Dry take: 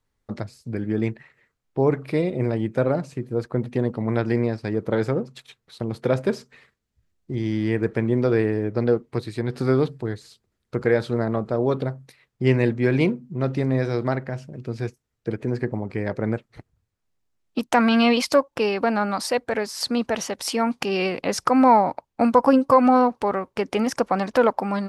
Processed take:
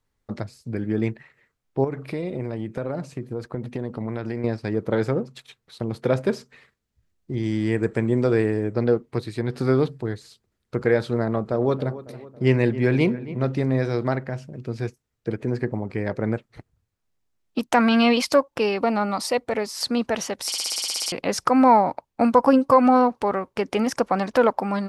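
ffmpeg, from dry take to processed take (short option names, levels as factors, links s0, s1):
-filter_complex "[0:a]asettb=1/sr,asplit=3[s0][s1][s2];[s0]atrim=end=1.844[s3];[s1]atrim=start=1.84:end=4.44,asetpts=PTS-STARTPTS,afade=t=in:d=0.004:c=qsin,afade=t=out:st=2.596:d=0.004:c=qsin,acompressor=threshold=0.0631:ratio=6:attack=3.2:release=140:knee=1:detection=peak[s4];[s2]atrim=start=4.436[s5];[s3][s4]acrossfade=d=0.004:c1=hsin:c2=qsin[s6];[s6][s5]acrossfade=d=0.004:c1=qsin:c2=hsin,asettb=1/sr,asplit=3[s7][s8][s9];[s7]atrim=end=7.434[s10];[s8]atrim=start=7.43:end=8.74,asetpts=PTS-STARTPTS,afade=t=in:d=0.004:c=qsin,afade=t=out:st=1.306:d=0.004:c=qsin,equalizer=f=7800:t=o:w=0.28:g=15[s11];[s9]atrim=start=8.736[s12];[s10][s11]acrossfade=d=0.004:c1=hsin:c2=qsin[s13];[s13][s12]acrossfade=d=0.004:c1=qsin:c2=hsin,asettb=1/sr,asplit=3[s14][s15][s16];[s14]atrim=end=11.244[s17];[s15]atrim=start=11.24:end=13.47,asetpts=PTS-STARTPTS,afade=t=in:d=0.004:c=qsin,afade=t=out:st=2.226:d=0.004:c=qsin,asplit=2[s18][s19];[s19]adelay=275,lowpass=f=2000:p=1,volume=0.178,asplit=2[s20][s21];[s21]adelay=275,lowpass=f=2000:p=1,volume=0.54,asplit=2[s22][s23];[s23]adelay=275,lowpass=f=2000:p=1,volume=0.54,asplit=2[s24][s25];[s25]adelay=275,lowpass=f=2000:p=1,volume=0.54,asplit=2[s26][s27];[s27]adelay=275,lowpass=f=2000:p=1,volume=0.54[s28];[s18][s20][s22][s24][s26][s28]amix=inputs=6:normalize=0,atrim=end_sample=98343[s29];[s16]atrim=start=13.466[s30];[s17][s29]acrossfade=d=0.004:c1=hsin:c2=qsin[s31];[s31][s30]acrossfade=d=0.004:c1=qsin:c2=hsin,asettb=1/sr,asplit=3[s32][s33][s34];[s32]atrim=end=18.764[s35];[s33]atrim=start=18.76:end=19.75,asetpts=PTS-STARTPTS,afade=t=in:d=0.004:c=qsin,afade=t=out:st=0.986:d=0.004:c=qsin,bandreject=f=1600:w=5.4[s36];[s34]atrim=start=19.746[s37];[s35][s36]acrossfade=d=0.004:c1=hsin:c2=qsin[s38];[s38][s37]acrossfade=d=0.004:c1=qsin:c2=hsin,asplit=12[s39][s40][s41][s42][s43][s44][s45][s46][s47][s48][s49][s50];[s39]atrim=end=20.522[s51];[s40]atrim=start=20.458:end=20.522[s52];[s41]atrim=start=20.458:end=20.522[s53];[s42]atrim=start=20.458:end=20.522[s54];[s43]atrim=start=20.458:end=20.522[s55];[s44]atrim=start=20.458:end=20.522[s56];[s45]atrim=start=20.458:end=20.522[s57];[s46]atrim=start=20.458:end=20.522[s58];[s47]atrim=start=20.458:end=20.522[s59];[s48]atrim=start=20.458:end=20.522[s60];[s49]atrim=start=20.458:end=20.522[s61];[s50]atrim=start=21.118[s62];[s51][s52]acrossfade=d=0.004:c1=hsin:c2=hsin[s63];[s63][s53]acrossfade=d=0.004:c1=hsin:c2=hsin[s64];[s64][s54]acrossfade=d=0.004:c1=hsin:c2=hsin[s65];[s65][s55]acrossfade=d=0.004:c1=hsin:c2=hsin[s66];[s66][s56]acrossfade=d=0.004:c1=hsin:c2=hsin[s67];[s67][s57]acrossfade=d=0.004:c1=hsin:c2=hsin[s68];[s68][s58]acrossfade=d=0.004:c1=hsin:c2=hsin[s69];[s69][s59]acrossfade=d=0.004:c1=hsin:c2=hsin[s70];[s70][s60]acrossfade=d=0.004:c1=hsin:c2=hsin[s71];[s71][s61]acrossfade=d=0.004:c1=hsin:c2=hsin[s72];[s72][s62]acrossfade=d=0.004:c1=hsin:c2=hsin"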